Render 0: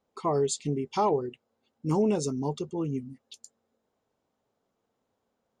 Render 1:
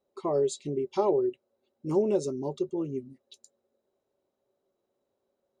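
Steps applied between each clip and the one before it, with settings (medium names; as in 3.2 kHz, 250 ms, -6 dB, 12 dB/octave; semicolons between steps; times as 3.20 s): small resonant body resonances 380/560/3900 Hz, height 16 dB, ringing for 70 ms; trim -7 dB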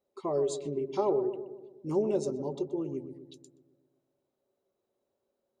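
filtered feedback delay 124 ms, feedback 60%, low-pass 990 Hz, level -9 dB; trim -3 dB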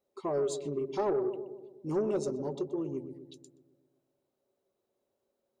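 saturation -22.5 dBFS, distortion -18 dB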